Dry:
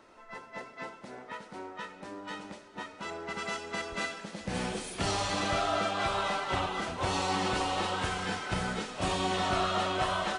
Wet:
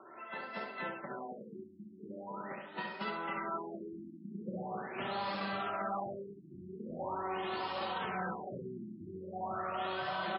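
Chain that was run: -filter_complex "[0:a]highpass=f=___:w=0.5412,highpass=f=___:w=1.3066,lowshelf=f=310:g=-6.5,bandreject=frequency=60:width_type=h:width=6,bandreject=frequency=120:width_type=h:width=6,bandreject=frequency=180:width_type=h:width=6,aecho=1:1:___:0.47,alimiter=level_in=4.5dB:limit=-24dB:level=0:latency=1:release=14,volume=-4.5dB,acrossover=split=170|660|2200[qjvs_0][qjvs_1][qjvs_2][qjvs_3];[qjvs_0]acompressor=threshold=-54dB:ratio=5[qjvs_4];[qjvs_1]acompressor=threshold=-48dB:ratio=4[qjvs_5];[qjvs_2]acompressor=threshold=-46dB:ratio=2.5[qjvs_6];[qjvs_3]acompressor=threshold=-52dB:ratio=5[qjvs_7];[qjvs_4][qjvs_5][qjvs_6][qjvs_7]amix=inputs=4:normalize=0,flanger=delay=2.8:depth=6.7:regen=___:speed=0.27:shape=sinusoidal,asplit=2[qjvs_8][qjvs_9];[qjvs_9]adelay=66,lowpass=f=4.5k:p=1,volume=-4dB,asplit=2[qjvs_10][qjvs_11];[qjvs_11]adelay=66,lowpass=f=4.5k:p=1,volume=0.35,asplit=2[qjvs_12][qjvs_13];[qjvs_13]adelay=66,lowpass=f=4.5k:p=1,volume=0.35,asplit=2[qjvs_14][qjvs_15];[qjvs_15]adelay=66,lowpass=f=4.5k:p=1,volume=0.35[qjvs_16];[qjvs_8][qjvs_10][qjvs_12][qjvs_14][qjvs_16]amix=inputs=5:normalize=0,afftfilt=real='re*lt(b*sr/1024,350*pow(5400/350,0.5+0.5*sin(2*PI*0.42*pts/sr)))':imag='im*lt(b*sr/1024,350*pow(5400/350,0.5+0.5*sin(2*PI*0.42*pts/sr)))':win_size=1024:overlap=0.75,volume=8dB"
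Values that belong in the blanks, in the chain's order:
100, 100, 5.2, 45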